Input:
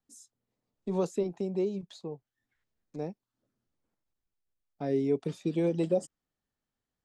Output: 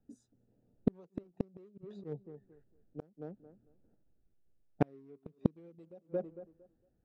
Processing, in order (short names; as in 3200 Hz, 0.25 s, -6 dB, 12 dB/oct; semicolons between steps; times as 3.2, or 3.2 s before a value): Wiener smoothing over 41 samples; high shelf 5300 Hz -9 dB; tape echo 0.226 s, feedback 23%, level -21 dB, low-pass 1700 Hz; flipped gate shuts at -28 dBFS, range -41 dB; 1.7–3.02 auto swell 0.343 s; gain +14.5 dB